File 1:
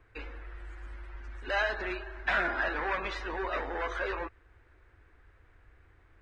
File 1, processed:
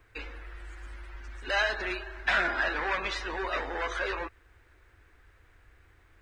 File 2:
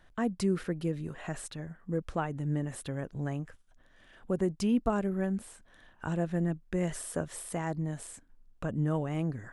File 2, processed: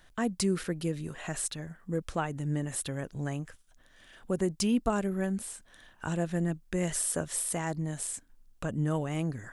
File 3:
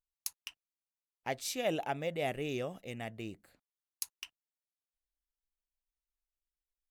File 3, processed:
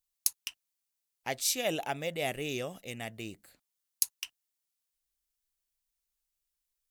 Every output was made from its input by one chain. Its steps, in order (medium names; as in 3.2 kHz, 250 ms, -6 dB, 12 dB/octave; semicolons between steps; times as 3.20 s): treble shelf 3.1 kHz +11.5 dB